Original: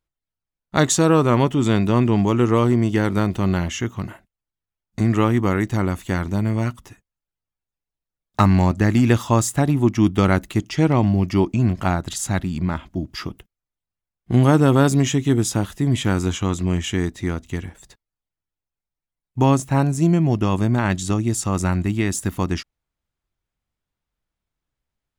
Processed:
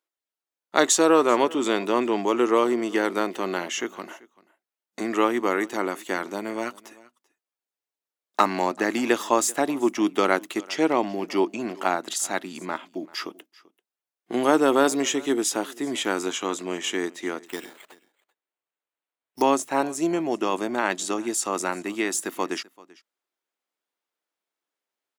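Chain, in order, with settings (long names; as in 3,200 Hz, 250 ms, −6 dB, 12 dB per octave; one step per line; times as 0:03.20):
single-tap delay 388 ms −22.5 dB
0:17.47–0:19.42: sample-rate reduction 5,400 Hz, jitter 0%
high-pass filter 320 Hz 24 dB per octave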